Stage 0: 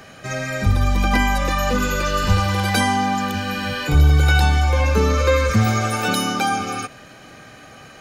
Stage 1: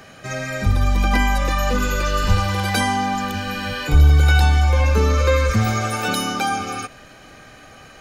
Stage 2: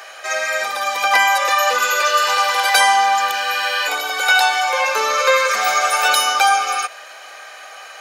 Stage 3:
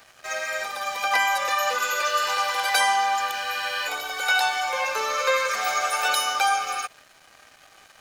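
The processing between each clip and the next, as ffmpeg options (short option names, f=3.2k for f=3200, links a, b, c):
-af "asubboost=boost=3:cutoff=67,volume=-1dB"
-af "highpass=f=610:w=0.5412,highpass=f=610:w=1.3066,volume=8.5dB"
-af "aeval=exprs='sgn(val(0))*max(abs(val(0))-0.0141,0)':c=same,volume=-7dB"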